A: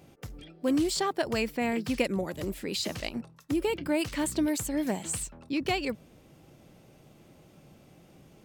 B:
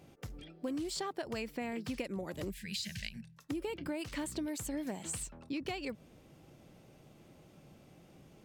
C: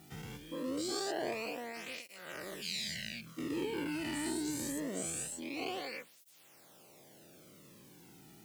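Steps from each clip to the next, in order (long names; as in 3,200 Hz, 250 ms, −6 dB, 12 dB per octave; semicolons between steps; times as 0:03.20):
gain on a spectral selection 0:02.50–0:03.37, 230–1,500 Hz −22 dB; high-shelf EQ 11,000 Hz −4 dB; downward compressor 6 to 1, threshold −32 dBFS, peak gain reduction 10.5 dB; level −3 dB
every bin's largest magnitude spread in time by 240 ms; background noise white −56 dBFS; through-zero flanger with one copy inverted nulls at 0.24 Hz, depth 1.9 ms; level −3.5 dB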